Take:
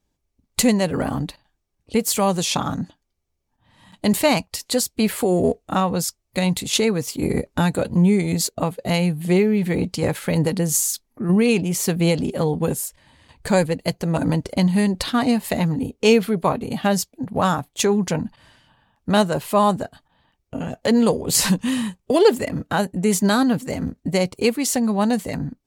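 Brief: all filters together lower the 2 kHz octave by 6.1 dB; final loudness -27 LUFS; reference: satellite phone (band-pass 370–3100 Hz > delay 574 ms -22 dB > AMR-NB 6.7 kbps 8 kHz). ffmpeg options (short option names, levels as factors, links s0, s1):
-af "highpass=370,lowpass=3100,equalizer=f=2000:t=o:g=-7,aecho=1:1:574:0.0794,volume=0.944" -ar 8000 -c:a libopencore_amrnb -b:a 6700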